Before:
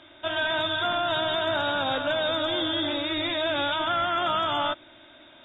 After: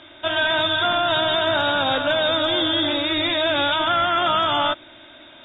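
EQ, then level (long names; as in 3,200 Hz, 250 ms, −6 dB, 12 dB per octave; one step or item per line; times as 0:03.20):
high-frequency loss of the air 120 metres
high-shelf EQ 3,400 Hz +8.5 dB
+5.5 dB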